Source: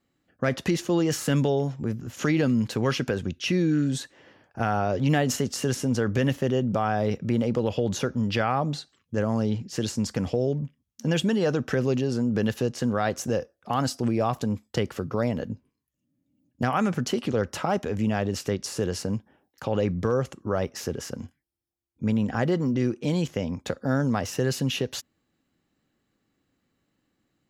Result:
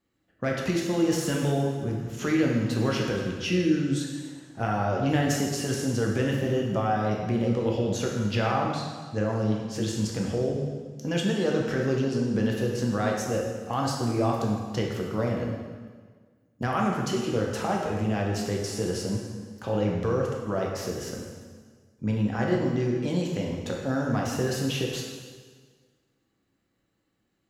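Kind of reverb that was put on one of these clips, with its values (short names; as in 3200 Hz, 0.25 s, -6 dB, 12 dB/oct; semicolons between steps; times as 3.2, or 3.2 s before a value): plate-style reverb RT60 1.6 s, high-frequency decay 0.9×, DRR -1.5 dB; gain -4.5 dB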